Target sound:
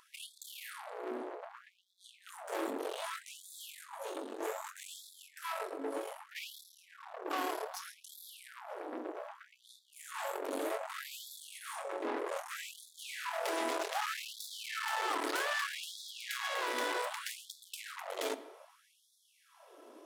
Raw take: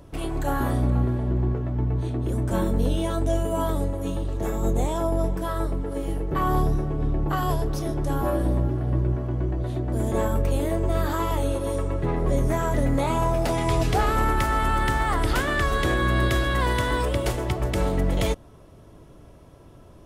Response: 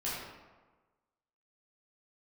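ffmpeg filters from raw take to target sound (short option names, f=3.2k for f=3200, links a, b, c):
-filter_complex "[0:a]aeval=exprs='(tanh(35.5*val(0)+0.55)-tanh(0.55))/35.5':c=same,bandreject=f=50:t=h:w=6,bandreject=f=100:t=h:w=6,bandreject=f=150:t=h:w=6,bandreject=f=200:t=h:w=6,bandreject=f=250:t=h:w=6,bandreject=f=300:t=h:w=6,bandreject=f=350:t=h:w=6,asplit=2[a][b];[1:a]atrim=start_sample=2205,asetrate=39249,aresample=44100[c];[b][c]afir=irnorm=-1:irlink=0,volume=-17dB[d];[a][d]amix=inputs=2:normalize=0,afftfilt=real='re*gte(b*sr/1024,250*pow(3400/250,0.5+0.5*sin(2*PI*0.64*pts/sr)))':imag='im*gte(b*sr/1024,250*pow(3400/250,0.5+0.5*sin(2*PI*0.64*pts/sr)))':win_size=1024:overlap=0.75"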